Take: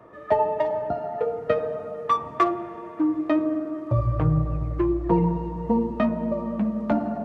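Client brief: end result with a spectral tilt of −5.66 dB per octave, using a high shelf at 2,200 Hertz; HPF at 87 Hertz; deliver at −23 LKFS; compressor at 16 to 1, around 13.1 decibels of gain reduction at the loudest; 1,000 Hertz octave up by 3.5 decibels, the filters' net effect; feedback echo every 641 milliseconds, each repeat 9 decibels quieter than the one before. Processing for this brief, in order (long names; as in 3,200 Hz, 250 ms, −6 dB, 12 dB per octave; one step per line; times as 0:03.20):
high-pass filter 87 Hz
parametric band 1,000 Hz +3.5 dB
high-shelf EQ 2,200 Hz +3.5 dB
downward compressor 16 to 1, threshold −26 dBFS
repeating echo 641 ms, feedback 35%, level −9 dB
level +8 dB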